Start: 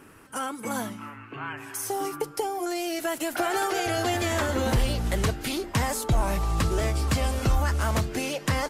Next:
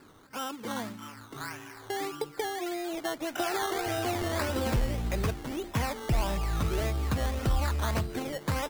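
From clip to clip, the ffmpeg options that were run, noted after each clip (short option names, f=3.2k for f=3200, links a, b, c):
-af "lowpass=f=2.6k:w=0.5412,lowpass=f=2.6k:w=1.3066,acrusher=samples=14:mix=1:aa=0.000001:lfo=1:lforange=8.4:lforate=1.7,volume=-4dB"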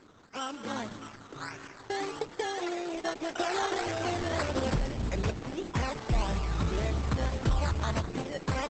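-filter_complex "[0:a]asplit=2[a][b];[b]asplit=5[c][d][e][f][g];[c]adelay=182,afreqshift=52,volume=-12dB[h];[d]adelay=364,afreqshift=104,volume=-18.4dB[i];[e]adelay=546,afreqshift=156,volume=-24.8dB[j];[f]adelay=728,afreqshift=208,volume=-31.1dB[k];[g]adelay=910,afreqshift=260,volume=-37.5dB[l];[h][i][j][k][l]amix=inputs=5:normalize=0[m];[a][m]amix=inputs=2:normalize=0" -ar 48000 -c:a libopus -b:a 10k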